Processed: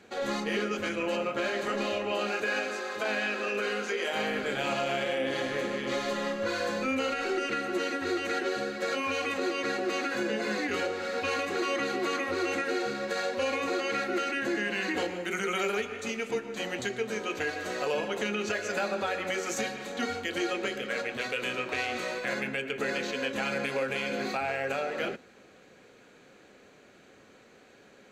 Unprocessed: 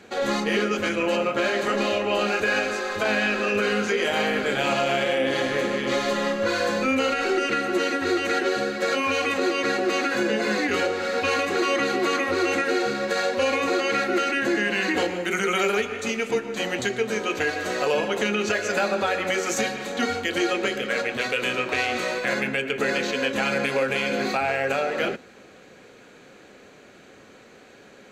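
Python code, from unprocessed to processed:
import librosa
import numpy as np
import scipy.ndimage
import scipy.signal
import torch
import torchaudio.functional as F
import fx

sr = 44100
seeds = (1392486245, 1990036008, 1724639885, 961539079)

y = fx.highpass(x, sr, hz=fx.line((2.12, 160.0), (4.13, 330.0)), slope=12, at=(2.12, 4.13), fade=0.02)
y = y * 10.0 ** (-7.0 / 20.0)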